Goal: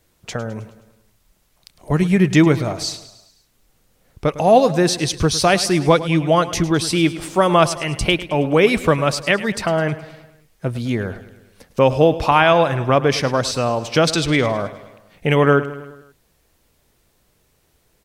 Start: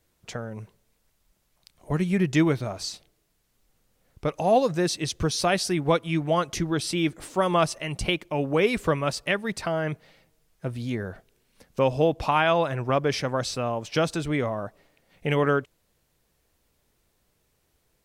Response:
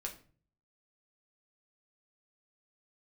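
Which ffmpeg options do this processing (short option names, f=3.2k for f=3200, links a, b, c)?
-filter_complex "[0:a]asettb=1/sr,asplit=3[a][b][c];[a]atrim=end=14.074[d];[b]atrim=start=14.07:end=14.65,asetpts=PTS-STARTPTS,afade=t=in:d=0.004:c=qsin,afade=t=out:st=0.576:d=0.004:c=qsin,equalizer=f=4.5k:t=o:w=1.5:g=11.5[e];[c]atrim=start=14.646[f];[d][e]acrossfade=d=0.004:c1=hsin:c2=qsin[g];[g][f]acrossfade=d=0.004:c1=qsin:c2=hsin,aecho=1:1:105|210|315|420|525:0.168|0.094|0.0526|0.0295|0.0165,volume=8dB"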